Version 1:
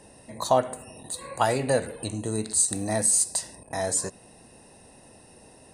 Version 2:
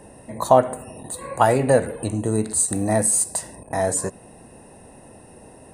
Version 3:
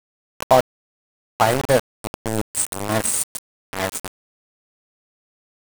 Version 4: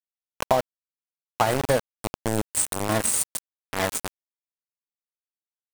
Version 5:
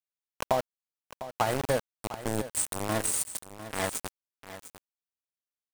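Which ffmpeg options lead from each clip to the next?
ffmpeg -i in.wav -af "equalizer=frequency=4700:width=0.76:gain=-12.5,volume=7.5dB" out.wav
ffmpeg -i in.wav -af "aeval=exprs='val(0)*gte(abs(val(0)),0.15)':channel_layout=same" out.wav
ffmpeg -i in.wav -af "acompressor=threshold=-17dB:ratio=6" out.wav
ffmpeg -i in.wav -af "aecho=1:1:702:0.211,volume=-5.5dB" out.wav

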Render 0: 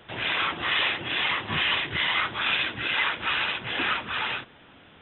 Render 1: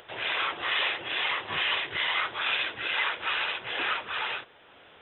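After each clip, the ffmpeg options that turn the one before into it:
ffmpeg -i in.wav -af "lowshelf=frequency=330:width_type=q:width=1.5:gain=-8.5,acompressor=mode=upward:threshold=-45dB:ratio=2.5,volume=-3dB" out.wav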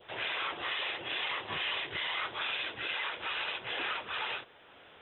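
ffmpeg -i in.wav -af "adynamicequalizer=threshold=0.0126:dfrequency=1600:dqfactor=0.99:tfrequency=1600:tqfactor=0.99:attack=5:release=100:ratio=0.375:range=2:mode=cutabove:tftype=bell,alimiter=limit=-23dB:level=0:latency=1:release=47,volume=-2dB" out.wav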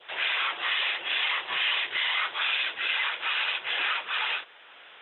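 ffmpeg -i in.wav -af "bandpass=frequency=2400:width_type=q:width=0.64:csg=0,volume=8.5dB" out.wav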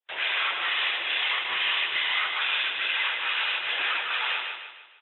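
ffmpeg -i in.wav -af "bandreject=frequency=77.37:width_type=h:width=4,bandreject=frequency=154.74:width_type=h:width=4,bandreject=frequency=232.11:width_type=h:width=4,bandreject=frequency=309.48:width_type=h:width=4,bandreject=frequency=386.85:width_type=h:width=4,bandreject=frequency=464.22:width_type=h:width=4,bandreject=frequency=541.59:width_type=h:width=4,bandreject=frequency=618.96:width_type=h:width=4,bandreject=frequency=696.33:width_type=h:width=4,bandreject=frequency=773.7:width_type=h:width=4,bandreject=frequency=851.07:width_type=h:width=4,bandreject=frequency=928.44:width_type=h:width=4,bandreject=frequency=1005.81:width_type=h:width=4,bandreject=frequency=1083.18:width_type=h:width=4,bandreject=frequency=1160.55:width_type=h:width=4,bandreject=frequency=1237.92:width_type=h:width=4,bandreject=frequency=1315.29:width_type=h:width=4,bandreject=frequency=1392.66:width_type=h:width=4,bandreject=frequency=1470.03:width_type=h:width=4,agate=range=-43dB:threshold=-46dB:ratio=16:detection=peak,aecho=1:1:152|304|456|608|760:0.562|0.242|0.104|0.0447|0.0192" out.wav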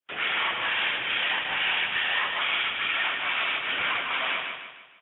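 ffmpeg -i in.wav -af "afreqshift=-220" out.wav

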